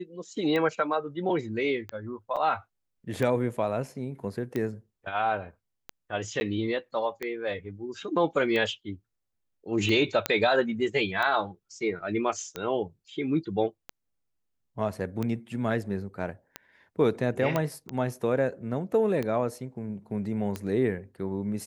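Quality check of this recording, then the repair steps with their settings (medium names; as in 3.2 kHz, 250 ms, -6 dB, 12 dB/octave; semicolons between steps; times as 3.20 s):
tick 45 rpm -18 dBFS
2.36–2.37 s: dropout 6.5 ms
6.40–6.41 s: dropout 10 ms
10.26 s: pop -8 dBFS
17.56 s: pop -13 dBFS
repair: de-click; interpolate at 2.36 s, 6.5 ms; interpolate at 6.40 s, 10 ms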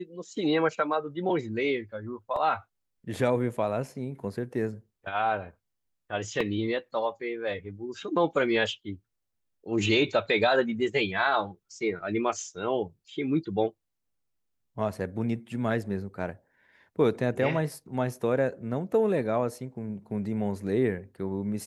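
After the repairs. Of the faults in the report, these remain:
nothing left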